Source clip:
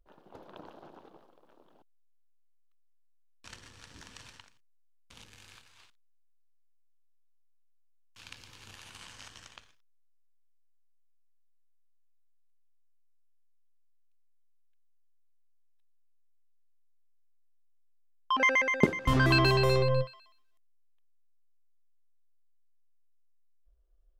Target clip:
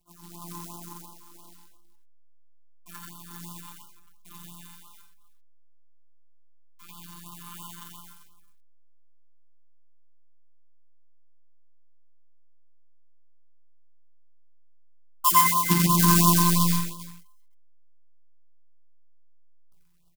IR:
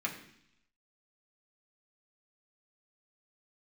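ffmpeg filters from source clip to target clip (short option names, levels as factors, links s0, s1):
-filter_complex "[0:a]tremolo=f=75:d=0.947,firequalizer=gain_entry='entry(110,0);entry(280,8);entry(460,-17);entry(1000,9);entry(1900,-13)':delay=0.05:min_phase=1[s0];[1:a]atrim=start_sample=2205,afade=t=out:st=0.22:d=0.01,atrim=end_sample=10143[s1];[s0][s1]afir=irnorm=-1:irlink=0,atempo=1.2,afftfilt=real='hypot(re,im)*cos(PI*b)':imag='0':win_size=1024:overlap=0.75,asplit=2[s2][s3];[s3]acompressor=threshold=0.00794:ratio=10,volume=1.33[s4];[s2][s4]amix=inputs=2:normalize=0,acrusher=bits=3:mode=log:mix=0:aa=0.000001,crystalizer=i=4:c=0,aecho=1:1:86|88|126|128|397:0.708|0.282|0.126|0.668|0.178,afftfilt=real='re*(1-between(b*sr/1024,510*pow(2000/510,0.5+0.5*sin(2*PI*2.9*pts/sr))/1.41,510*pow(2000/510,0.5+0.5*sin(2*PI*2.9*pts/sr))*1.41))':imag='im*(1-between(b*sr/1024,510*pow(2000/510,0.5+0.5*sin(2*PI*2.9*pts/sr))/1.41,510*pow(2000/510,0.5+0.5*sin(2*PI*2.9*pts/sr))*1.41))':win_size=1024:overlap=0.75"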